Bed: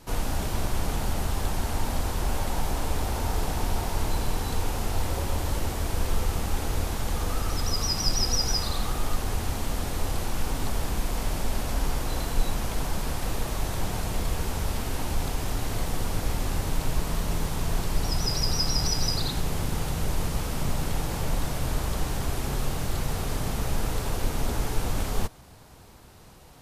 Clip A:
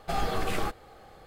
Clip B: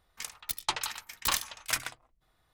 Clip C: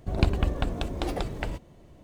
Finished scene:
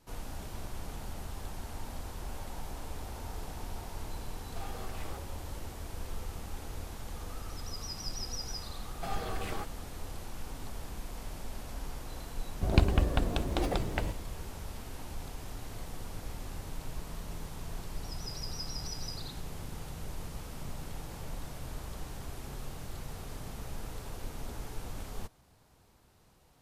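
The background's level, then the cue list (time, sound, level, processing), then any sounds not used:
bed −13.5 dB
0:04.47: mix in A −15.5 dB
0:08.94: mix in A −8 dB
0:12.55: mix in C −1 dB
not used: B

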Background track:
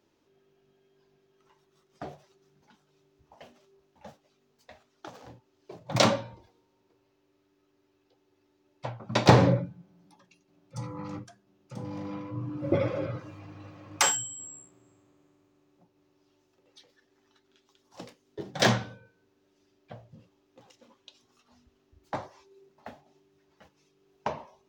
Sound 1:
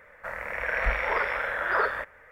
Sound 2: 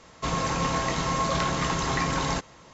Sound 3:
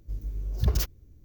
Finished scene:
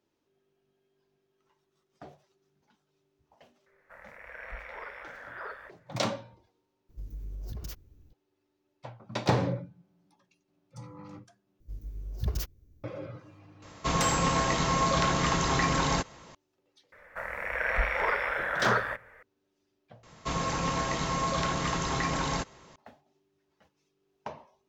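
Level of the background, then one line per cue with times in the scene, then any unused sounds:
background track −8 dB
0:03.66: mix in 1 −16 dB
0:06.89: mix in 3 −4.5 dB + downward compressor 10 to 1, threshold −30 dBFS
0:11.60: overwrite with 3 −6.5 dB
0:13.62: mix in 2
0:16.92: mix in 1 −1.5 dB
0:20.03: mix in 2 −3.5 dB

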